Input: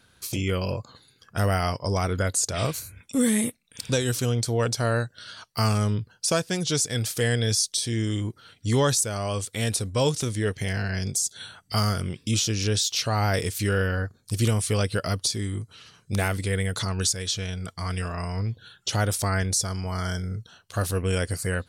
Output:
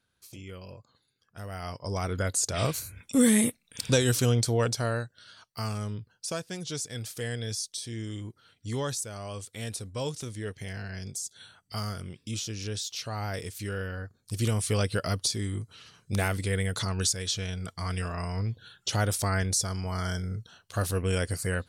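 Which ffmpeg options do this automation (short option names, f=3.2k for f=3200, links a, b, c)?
-af "volume=8.5dB,afade=t=in:st=1.48:d=0.5:silence=0.281838,afade=t=in:st=1.98:d=1.19:silence=0.446684,afade=t=out:st=4.3:d=0.85:silence=0.281838,afade=t=in:st=14.04:d=0.68:silence=0.421697"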